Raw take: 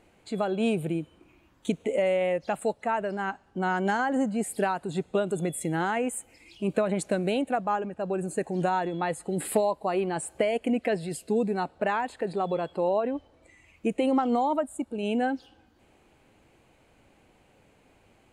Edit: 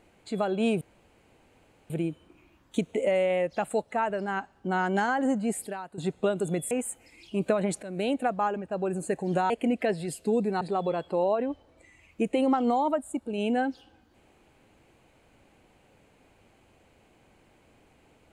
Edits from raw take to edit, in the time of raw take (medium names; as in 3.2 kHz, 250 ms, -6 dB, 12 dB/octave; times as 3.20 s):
0.81 s: insert room tone 1.09 s
4.58–4.89 s: gain -10 dB
5.62–5.99 s: delete
7.11–7.38 s: fade in, from -18.5 dB
8.78–10.53 s: delete
11.64–12.26 s: delete